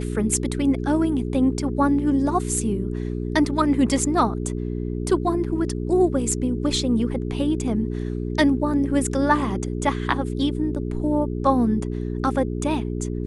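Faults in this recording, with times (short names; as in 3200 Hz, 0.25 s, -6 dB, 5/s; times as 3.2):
hum 60 Hz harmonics 7 -27 dBFS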